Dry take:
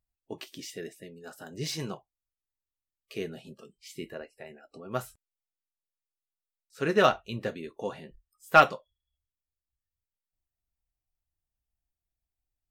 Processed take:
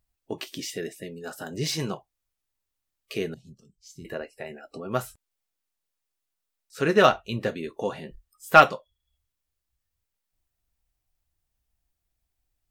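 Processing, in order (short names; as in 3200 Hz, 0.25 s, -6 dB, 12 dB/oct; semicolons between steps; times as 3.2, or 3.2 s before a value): 3.34–4.05 EQ curve 100 Hz 0 dB, 620 Hz -27 dB, 2400 Hz -29 dB, 6300 Hz -5 dB, 9000 Hz -16 dB; in parallel at -1.5 dB: compressor, threshold -42 dBFS, peak gain reduction 27.5 dB; on the sum: gain +3.5 dB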